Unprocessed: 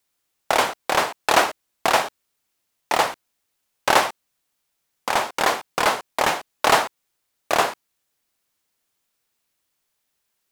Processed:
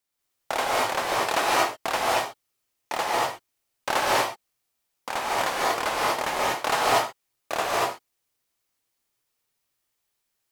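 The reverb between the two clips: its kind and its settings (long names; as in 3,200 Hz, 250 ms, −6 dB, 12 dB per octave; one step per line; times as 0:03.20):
reverb whose tail is shaped and stops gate 260 ms rising, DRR −4.5 dB
level −9 dB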